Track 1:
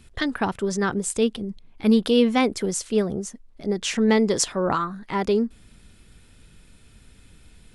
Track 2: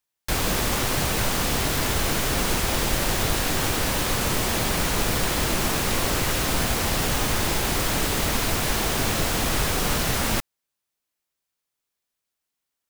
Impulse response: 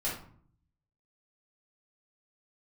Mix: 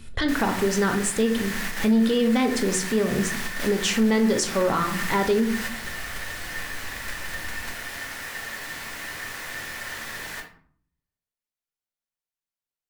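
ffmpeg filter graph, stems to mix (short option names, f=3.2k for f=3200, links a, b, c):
-filter_complex "[0:a]volume=-4dB,asplit=3[a][b][c];[b]volume=-7dB[d];[1:a]aeval=exprs='val(0)*sin(2*PI*1800*n/s)':c=same,volume=-13.5dB,asplit=2[e][f];[f]volume=-9dB[g];[c]apad=whole_len=568829[h];[e][h]sidechaingate=range=-9dB:threshold=-50dB:ratio=16:detection=peak[i];[2:a]atrim=start_sample=2205[j];[d][g]amix=inputs=2:normalize=0[k];[k][j]afir=irnorm=-1:irlink=0[l];[a][i][l]amix=inputs=3:normalize=0,acontrast=70,alimiter=limit=-13.5dB:level=0:latency=1:release=229"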